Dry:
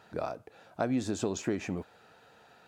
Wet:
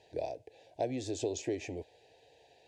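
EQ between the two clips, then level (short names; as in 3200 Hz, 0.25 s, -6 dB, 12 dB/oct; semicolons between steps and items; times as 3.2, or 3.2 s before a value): Butterworth band-stop 1300 Hz, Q 1.7; LPF 7800 Hz 12 dB/oct; fixed phaser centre 490 Hz, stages 4; 0.0 dB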